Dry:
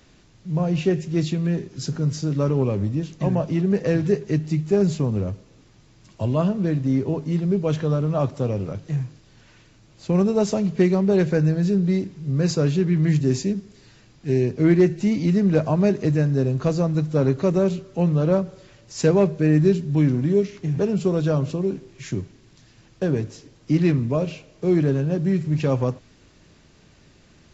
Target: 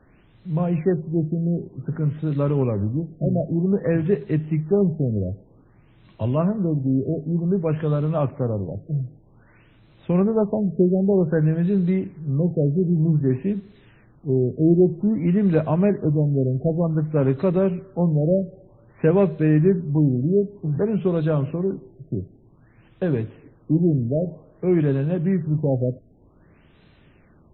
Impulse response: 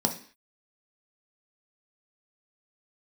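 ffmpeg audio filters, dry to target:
-filter_complex "[0:a]acrossover=split=2600[s0][s1];[s1]acompressor=threshold=0.00447:ratio=4:attack=1:release=60[s2];[s0][s2]amix=inputs=2:normalize=0,afftfilt=real='re*lt(b*sr/1024,690*pow(4200/690,0.5+0.5*sin(2*PI*0.53*pts/sr)))':imag='im*lt(b*sr/1024,690*pow(4200/690,0.5+0.5*sin(2*PI*0.53*pts/sr)))':win_size=1024:overlap=0.75"

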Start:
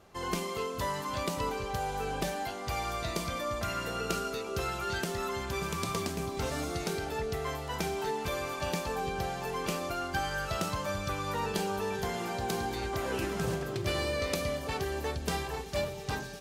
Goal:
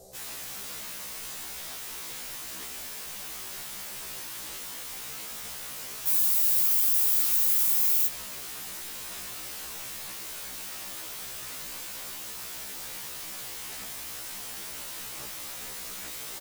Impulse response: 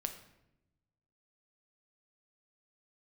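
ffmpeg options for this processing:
-filter_complex "[0:a]firequalizer=gain_entry='entry(120,0);entry(210,-4);entry(300,-5);entry(550,12);entry(1100,-17);entry(2700,-16);entry(3900,2);entry(8000,15)':delay=0.05:min_phase=1,aeval=exprs='(mod(84.1*val(0)+1,2)-1)/84.1':c=same,asettb=1/sr,asplit=3[s0][s1][s2];[s0]atrim=end=6.074[s3];[s1]atrim=start=6.07:end=8.07,asetpts=PTS-STARTPTS,afade=t=in:d=0.004:c=qsin,afade=t=out:st=1.996:d=0.004:c=qsin,aemphasis=mode=production:type=50fm[s4];[s2]atrim=start=8.066[s5];[s3][s4]acrossfade=d=0.004:c1=hsin:c2=qsin[s6];[s6][s5]acrossfade=d=0.004:c1=qsin:c2=hsin,asplit=2[s7][s8];[1:a]atrim=start_sample=2205[s9];[s8][s9]afir=irnorm=-1:irlink=0,volume=0.794[s10];[s7][s10]amix=inputs=2:normalize=0,afftfilt=real='re*1.73*eq(mod(b,3),0)':imag='im*1.73*eq(mod(b,3),0)':win_size=2048:overlap=0.75,volume=1.26"

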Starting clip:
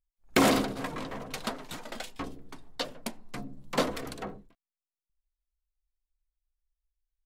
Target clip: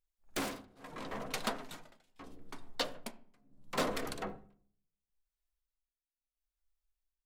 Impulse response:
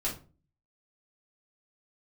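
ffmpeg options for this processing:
-filter_complex "[0:a]lowshelf=f=290:g=-5.5,aeval=exprs='0.0841*(abs(mod(val(0)/0.0841+3,4)-2)-1)':c=same,tremolo=f=0.74:d=0.98,asplit=2[s0][s1];[1:a]atrim=start_sample=2205,asetrate=25137,aresample=44100,lowpass=2500[s2];[s1][s2]afir=irnorm=-1:irlink=0,volume=0.112[s3];[s0][s3]amix=inputs=2:normalize=0"

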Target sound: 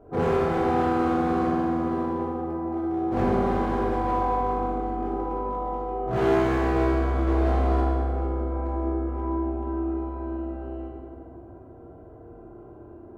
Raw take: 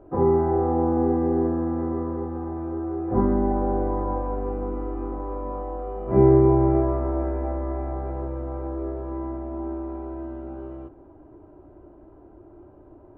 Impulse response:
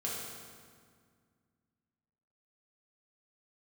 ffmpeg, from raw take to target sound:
-filter_complex "[0:a]asettb=1/sr,asplit=3[s0][s1][s2];[s0]atrim=end=7.274[s3];[s1]atrim=start=7.27:end=7.81,asetpts=PTS-STARTPTS,afade=t=in:d=0.004:c=qsin,afade=t=out:st=0.536:d=0.004:c=qsin,acontrast=29[s4];[s2]atrim=start=7.806[s5];[s3][s4]acrossfade=d=0.004:c1=hsin:c2=qsin[s6];[s6][s5]acrossfade=d=0.004:c1=qsin:c2=hsin,asoftclip=type=hard:threshold=0.075[s7];[1:a]atrim=start_sample=2205[s8];[s7][s8]afir=irnorm=-1:irlink=0"

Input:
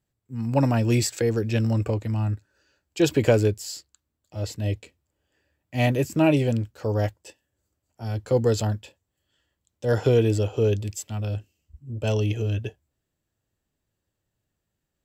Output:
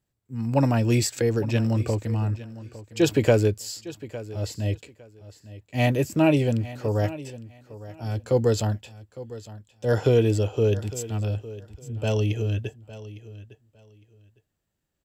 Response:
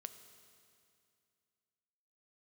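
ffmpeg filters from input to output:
-af "aecho=1:1:857|1714:0.15|0.0299"

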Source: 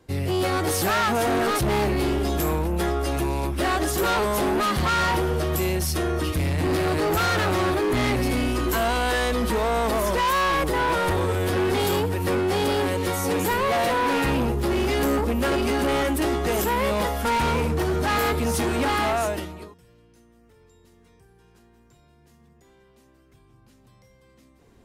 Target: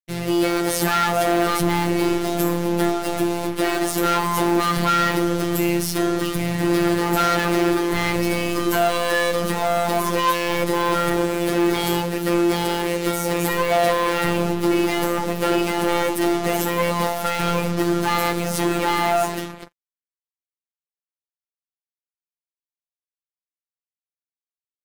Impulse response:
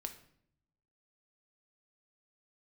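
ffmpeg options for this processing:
-filter_complex "[0:a]asplit=2[s0][s1];[1:a]atrim=start_sample=2205,highshelf=f=3400:g=-8[s2];[s1][s2]afir=irnorm=-1:irlink=0,volume=0.531[s3];[s0][s3]amix=inputs=2:normalize=0,acrusher=bits=4:mix=0:aa=0.5,afftfilt=real='hypot(re,im)*cos(PI*b)':imag='0':win_size=1024:overlap=0.75,volume=1.5"

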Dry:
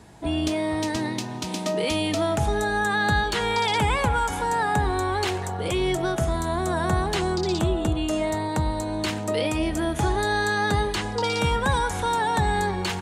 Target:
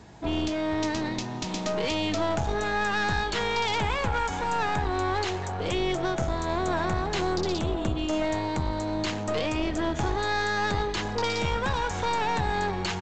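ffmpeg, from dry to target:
-af "alimiter=limit=0.178:level=0:latency=1:release=341,aresample=16000,aeval=exprs='clip(val(0),-1,0.0316)':c=same,aresample=44100"

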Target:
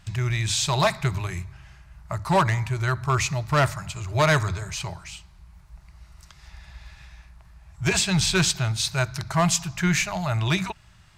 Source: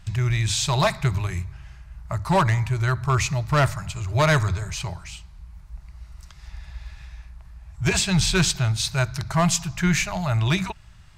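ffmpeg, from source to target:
-af "lowshelf=f=72:g=-11"

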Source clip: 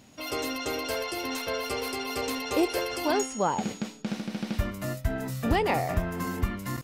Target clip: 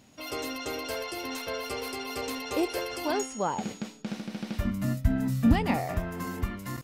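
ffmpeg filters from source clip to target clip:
-filter_complex "[0:a]asettb=1/sr,asplit=3[s0][s1][s2];[s0]atrim=end=4.654[s3];[s1]atrim=start=4.65:end=5.76,asetpts=PTS-STARTPTS,afade=t=in:d=0.004:c=qsin,afade=t=out:st=1.106:d=0.004:c=qsin,lowshelf=f=310:t=q:w=3:g=6.5[s4];[s2]atrim=start=5.756[s5];[s3][s4]acrossfade=d=0.004:c1=hsin:c2=qsin[s6];[s6][s5]acrossfade=d=0.004:c1=qsin:c2=hsin,volume=0.708"

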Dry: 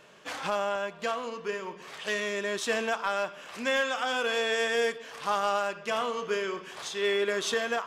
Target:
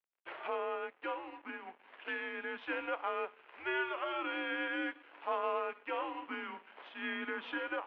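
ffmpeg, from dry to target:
-af "aeval=exprs='sgn(val(0))*max(abs(val(0))-0.00501,0)':c=same,highpass=f=540:t=q:w=0.5412,highpass=f=540:t=q:w=1.307,lowpass=f=3000:t=q:w=0.5176,lowpass=f=3000:t=q:w=0.7071,lowpass=f=3000:t=q:w=1.932,afreqshift=-160,volume=0.531"

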